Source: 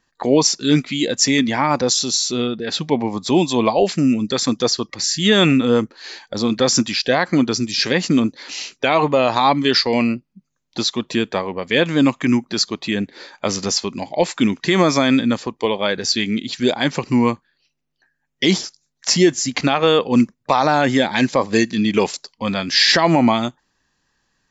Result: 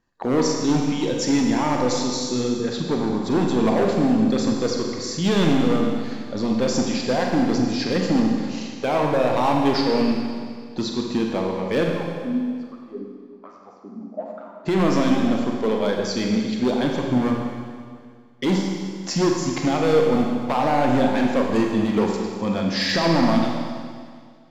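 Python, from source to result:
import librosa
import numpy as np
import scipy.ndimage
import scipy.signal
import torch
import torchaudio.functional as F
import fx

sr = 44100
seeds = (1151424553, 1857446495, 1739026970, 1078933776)

y = fx.tilt_shelf(x, sr, db=6.0, hz=1300.0)
y = np.clip(y, -10.0 ** (-9.5 / 20.0), 10.0 ** (-9.5 / 20.0))
y = fx.wah_lfo(y, sr, hz=1.2, low_hz=220.0, high_hz=1300.0, q=8.8, at=(11.89, 14.65), fade=0.02)
y = fx.rev_schroeder(y, sr, rt60_s=2.0, comb_ms=32, drr_db=0.5)
y = F.gain(torch.from_numpy(y), -7.5).numpy()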